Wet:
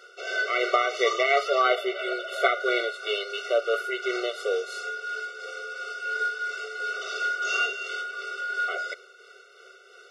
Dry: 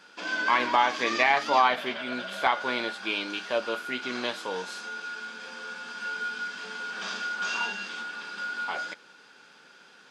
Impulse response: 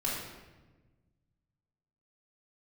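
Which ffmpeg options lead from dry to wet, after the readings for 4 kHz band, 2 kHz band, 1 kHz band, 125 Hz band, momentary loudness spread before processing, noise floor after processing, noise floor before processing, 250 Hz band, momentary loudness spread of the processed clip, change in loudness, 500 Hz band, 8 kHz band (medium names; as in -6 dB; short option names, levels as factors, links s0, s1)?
+0.5 dB, +2.0 dB, -1.5 dB, under -25 dB, 14 LU, -52 dBFS, -55 dBFS, -2.5 dB, 10 LU, +1.5 dB, +6.5 dB, +1.5 dB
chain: -af "equalizer=f=360:w=2.4:g=9,tremolo=f=2.9:d=0.39,afftfilt=real='re*eq(mod(floor(b*sr/1024/380),2),1)':imag='im*eq(mod(floor(b*sr/1024/380),2),1)':win_size=1024:overlap=0.75,volume=2"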